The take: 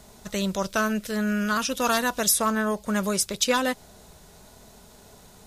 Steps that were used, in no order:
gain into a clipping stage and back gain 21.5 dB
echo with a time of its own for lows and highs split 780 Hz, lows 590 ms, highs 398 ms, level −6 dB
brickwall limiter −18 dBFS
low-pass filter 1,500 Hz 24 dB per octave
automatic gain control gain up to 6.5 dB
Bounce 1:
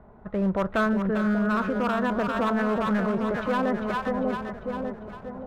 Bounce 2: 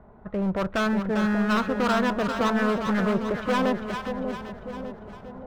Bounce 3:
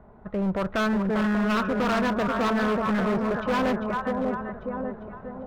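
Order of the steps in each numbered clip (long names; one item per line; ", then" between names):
low-pass filter, then gain into a clipping stage and back, then echo with a time of its own for lows and highs, then automatic gain control, then brickwall limiter
automatic gain control, then low-pass filter, then gain into a clipping stage and back, then brickwall limiter, then echo with a time of its own for lows and highs
low-pass filter, then brickwall limiter, then echo with a time of its own for lows and highs, then automatic gain control, then gain into a clipping stage and back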